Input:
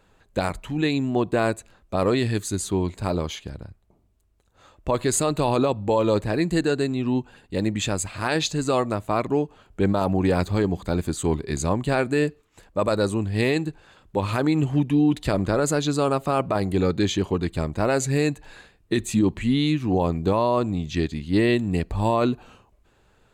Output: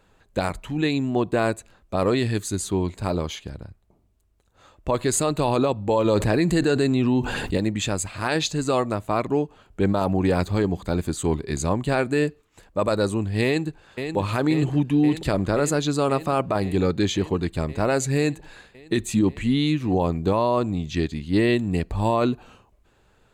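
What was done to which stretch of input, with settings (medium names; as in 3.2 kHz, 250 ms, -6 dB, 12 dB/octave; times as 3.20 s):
6.05–7.57 s: level flattener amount 70%
13.44–14.16 s: echo throw 530 ms, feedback 80%, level -7.5 dB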